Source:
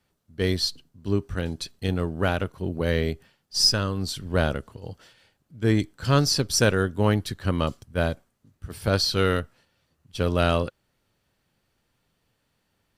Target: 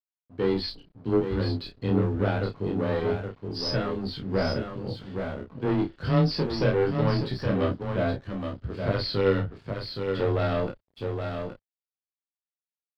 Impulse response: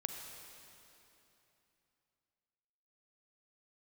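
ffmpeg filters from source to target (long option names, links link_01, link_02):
-filter_complex "[0:a]equalizer=frequency=340:width=0.69:gain=6,aresample=11025,asoftclip=type=tanh:threshold=-18.5dB,aresample=44100,flanger=delay=16:depth=5.8:speed=0.26,afreqshift=14,aecho=1:1:820:0.447,asplit=2[link_01][link_02];[link_02]acompressor=threshold=-38dB:ratio=6,volume=-2dB[link_03];[link_01][link_03]amix=inputs=2:normalize=0,aeval=exprs='sgn(val(0))*max(abs(val(0))-0.00282,0)':channel_layout=same,lowpass=frequency=2900:poles=1,equalizer=frequency=86:width=2.6:gain=6,asplit=2[link_04][link_05];[link_05]adelay=31,volume=-5.5dB[link_06];[link_04][link_06]amix=inputs=2:normalize=0"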